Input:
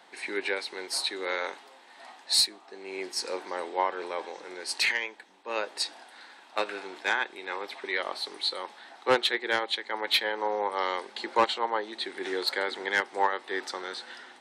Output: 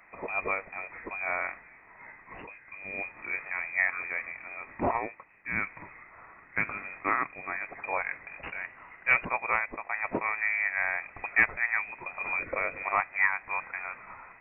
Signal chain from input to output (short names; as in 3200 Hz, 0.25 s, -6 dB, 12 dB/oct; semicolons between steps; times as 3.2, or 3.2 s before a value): 8.43–9.25 CVSD 32 kbps; inverted band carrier 2800 Hz; 12.39–12.83 resonant low shelf 610 Hz +8.5 dB, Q 3